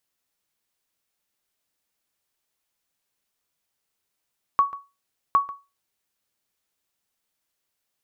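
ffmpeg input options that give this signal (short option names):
-f lavfi -i "aevalsrc='0.299*(sin(2*PI*1120*mod(t,0.76))*exp(-6.91*mod(t,0.76)/0.26)+0.133*sin(2*PI*1120*max(mod(t,0.76)-0.14,0))*exp(-6.91*max(mod(t,0.76)-0.14,0)/0.26))':d=1.52:s=44100"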